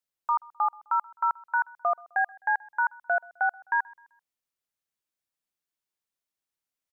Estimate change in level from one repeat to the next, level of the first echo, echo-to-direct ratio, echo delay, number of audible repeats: -8.0 dB, -24.0 dB, -23.5 dB, 0.129 s, 2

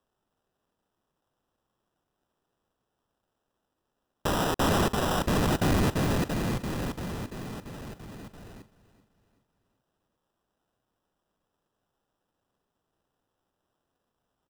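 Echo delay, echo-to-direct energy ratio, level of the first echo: 0.383 s, -16.0 dB, -17.0 dB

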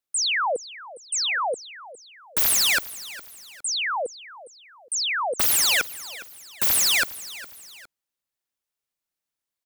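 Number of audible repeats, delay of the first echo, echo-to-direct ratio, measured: 2, 0.41 s, -16.5 dB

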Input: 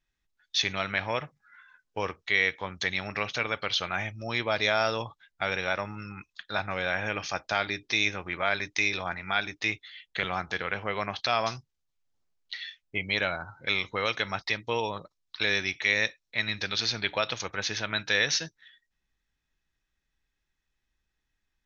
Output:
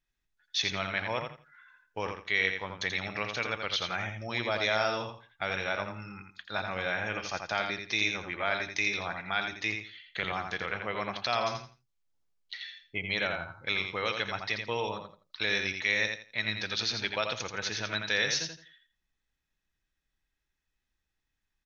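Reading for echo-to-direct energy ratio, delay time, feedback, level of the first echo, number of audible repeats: -6.0 dB, 84 ms, 23%, -6.0 dB, 3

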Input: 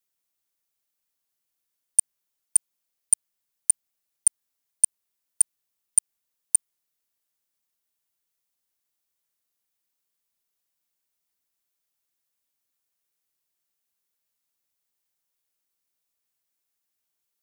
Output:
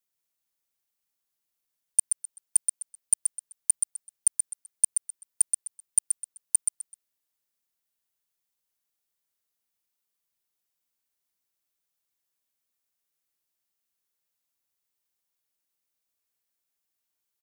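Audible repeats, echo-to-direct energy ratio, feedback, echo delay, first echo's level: 3, -5.0 dB, 26%, 0.128 s, -5.5 dB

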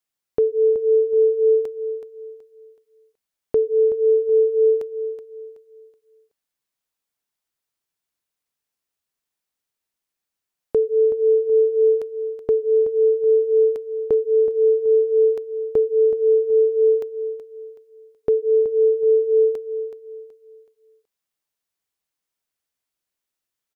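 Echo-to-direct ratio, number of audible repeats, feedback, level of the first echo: -10.5 dB, 3, 33%, -11.0 dB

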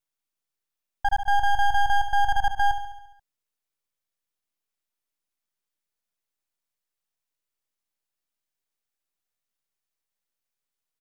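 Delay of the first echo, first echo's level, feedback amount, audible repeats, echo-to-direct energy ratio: 69 ms, -10.0 dB, 60%, 6, -8.0 dB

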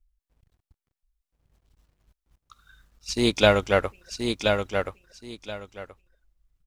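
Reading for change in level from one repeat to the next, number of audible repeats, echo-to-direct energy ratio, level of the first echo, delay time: -13.0 dB, 2, -5.0 dB, -5.0 dB, 1.027 s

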